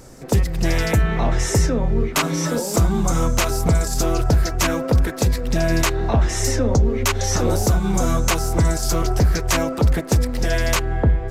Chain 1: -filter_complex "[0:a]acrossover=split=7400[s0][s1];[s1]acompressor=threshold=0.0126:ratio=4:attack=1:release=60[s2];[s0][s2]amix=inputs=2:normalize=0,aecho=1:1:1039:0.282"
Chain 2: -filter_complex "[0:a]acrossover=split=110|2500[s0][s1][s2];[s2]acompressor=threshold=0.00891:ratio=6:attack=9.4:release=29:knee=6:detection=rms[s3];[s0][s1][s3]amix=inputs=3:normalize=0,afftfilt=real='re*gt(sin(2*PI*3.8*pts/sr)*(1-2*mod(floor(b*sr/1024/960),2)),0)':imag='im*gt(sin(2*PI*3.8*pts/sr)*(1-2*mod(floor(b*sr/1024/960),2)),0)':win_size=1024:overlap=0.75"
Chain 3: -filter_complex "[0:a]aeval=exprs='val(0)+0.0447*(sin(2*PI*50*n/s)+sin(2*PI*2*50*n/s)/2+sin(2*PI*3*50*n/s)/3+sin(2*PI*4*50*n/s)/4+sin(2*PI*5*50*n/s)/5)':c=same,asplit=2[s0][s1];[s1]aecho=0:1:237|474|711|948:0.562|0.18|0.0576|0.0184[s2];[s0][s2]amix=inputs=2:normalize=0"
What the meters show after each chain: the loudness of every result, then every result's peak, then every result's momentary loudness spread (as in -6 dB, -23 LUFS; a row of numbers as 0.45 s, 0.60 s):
-20.0 LUFS, -24.0 LUFS, -18.5 LUFS; -7.5 dBFS, -4.5 dBFS, -5.0 dBFS; 3 LU, 5 LU, 2 LU